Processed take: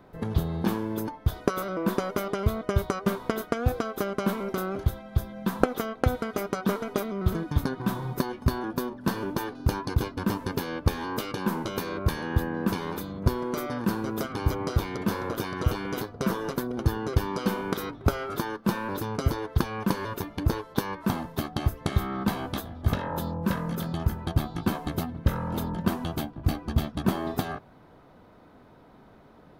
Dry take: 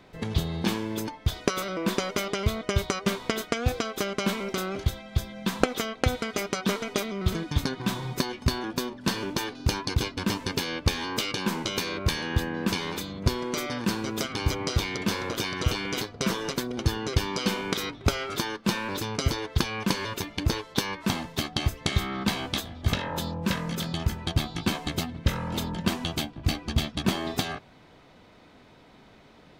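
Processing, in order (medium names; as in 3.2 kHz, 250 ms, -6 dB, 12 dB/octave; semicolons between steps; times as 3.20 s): high-order bell 4.1 kHz -11 dB 2.4 oct; trim +1 dB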